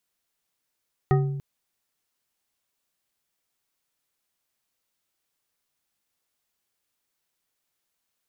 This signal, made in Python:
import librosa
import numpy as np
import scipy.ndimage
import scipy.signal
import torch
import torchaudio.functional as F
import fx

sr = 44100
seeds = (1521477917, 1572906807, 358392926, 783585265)

y = fx.strike_glass(sr, length_s=0.29, level_db=-16.0, body='bar', hz=140.0, decay_s=1.16, tilt_db=4.0, modes=5)